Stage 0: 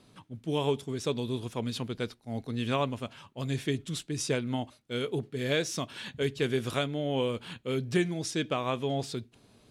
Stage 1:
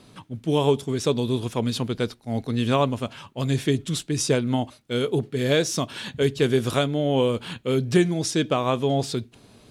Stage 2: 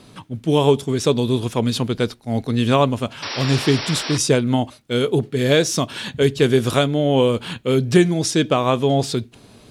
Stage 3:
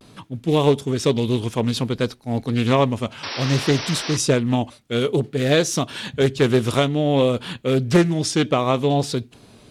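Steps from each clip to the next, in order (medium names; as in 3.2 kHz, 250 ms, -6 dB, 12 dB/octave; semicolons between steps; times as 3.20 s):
dynamic bell 2.2 kHz, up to -5 dB, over -45 dBFS, Q 1.1; trim +8.5 dB
painted sound noise, 3.22–4.18 s, 230–5800 Hz -33 dBFS; trim +5 dB
vibrato 0.58 Hz 54 cents; loudspeaker Doppler distortion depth 0.35 ms; trim -1.5 dB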